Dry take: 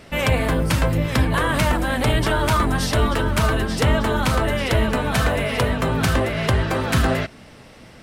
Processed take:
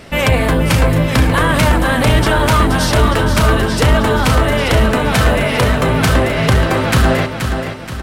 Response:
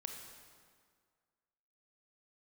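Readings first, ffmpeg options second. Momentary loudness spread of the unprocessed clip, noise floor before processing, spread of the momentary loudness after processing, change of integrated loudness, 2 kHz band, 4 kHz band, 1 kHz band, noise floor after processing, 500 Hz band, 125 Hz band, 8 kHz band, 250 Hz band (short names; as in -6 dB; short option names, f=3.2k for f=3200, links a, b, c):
2 LU, -45 dBFS, 2 LU, +7.0 dB, +7.0 dB, +7.0 dB, +7.0 dB, -24 dBFS, +7.0 dB, +7.0 dB, +7.0 dB, +7.0 dB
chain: -af "aecho=1:1:477|954|1431|1908|2385:0.398|0.175|0.0771|0.0339|0.0149,acontrast=83"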